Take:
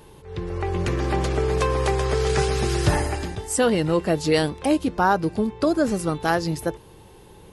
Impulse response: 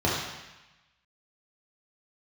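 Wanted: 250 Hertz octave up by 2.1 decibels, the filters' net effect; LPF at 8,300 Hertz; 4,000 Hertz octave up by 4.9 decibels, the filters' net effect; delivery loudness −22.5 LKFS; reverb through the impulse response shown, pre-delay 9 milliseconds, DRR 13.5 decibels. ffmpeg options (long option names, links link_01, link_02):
-filter_complex "[0:a]lowpass=8300,equalizer=frequency=250:width_type=o:gain=3,equalizer=frequency=4000:width_type=o:gain=6.5,asplit=2[link_01][link_02];[1:a]atrim=start_sample=2205,adelay=9[link_03];[link_02][link_03]afir=irnorm=-1:irlink=0,volume=-28dB[link_04];[link_01][link_04]amix=inputs=2:normalize=0,volume=-1.5dB"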